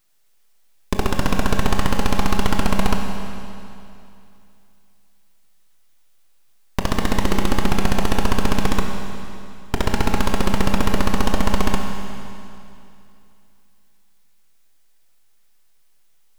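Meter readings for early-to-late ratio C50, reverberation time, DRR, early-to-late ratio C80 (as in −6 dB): 3.5 dB, 2.7 s, 2.5 dB, 4.5 dB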